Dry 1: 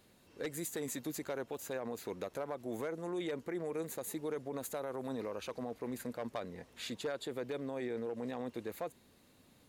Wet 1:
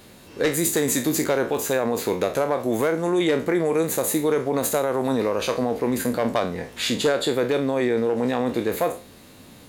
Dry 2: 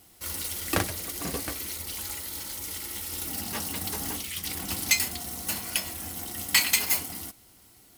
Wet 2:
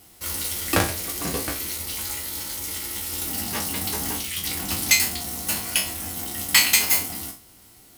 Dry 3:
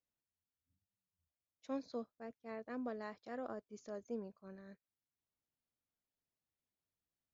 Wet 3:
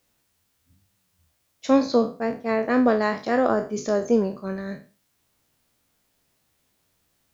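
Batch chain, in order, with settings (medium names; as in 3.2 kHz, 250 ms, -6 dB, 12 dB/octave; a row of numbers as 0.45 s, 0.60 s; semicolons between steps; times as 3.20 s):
spectral sustain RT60 0.35 s; normalise loudness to -23 LUFS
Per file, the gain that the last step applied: +16.5 dB, +3.5 dB, +23.0 dB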